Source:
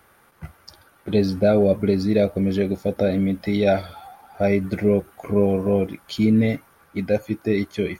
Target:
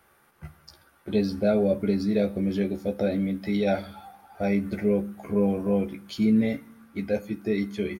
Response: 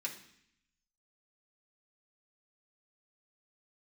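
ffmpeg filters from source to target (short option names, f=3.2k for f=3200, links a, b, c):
-filter_complex "[0:a]asplit=2[a][b];[b]adelay=14,volume=-6.5dB[c];[a][c]amix=inputs=2:normalize=0,asplit=2[d][e];[1:a]atrim=start_sample=2205,lowshelf=f=200:g=7[f];[e][f]afir=irnorm=-1:irlink=0,volume=-11dB[g];[d][g]amix=inputs=2:normalize=0,volume=-7.5dB"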